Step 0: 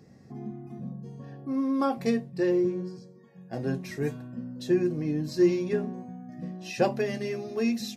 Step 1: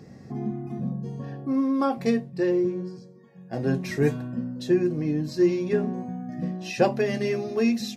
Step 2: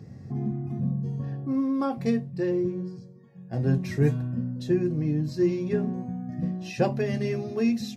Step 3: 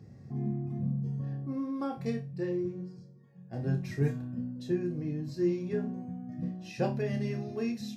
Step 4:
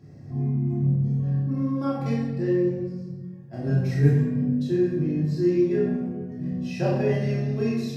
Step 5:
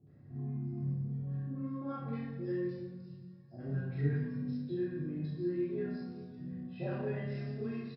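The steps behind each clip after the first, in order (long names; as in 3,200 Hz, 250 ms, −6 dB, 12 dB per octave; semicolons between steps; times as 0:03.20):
high-shelf EQ 7,300 Hz −5 dB; speech leveller within 4 dB 0.5 s; level +4 dB
parametric band 100 Hz +14 dB 1.5 octaves; level −5 dB
flutter between parallel walls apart 4.9 metres, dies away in 0.24 s; level −7.5 dB
rectangular room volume 780 cubic metres, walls mixed, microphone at 2.9 metres
Chebyshev low-pass with heavy ripple 5,200 Hz, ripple 6 dB; three-band delay without the direct sound lows, mids, highs 70/630 ms, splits 760/3,900 Hz; level −7.5 dB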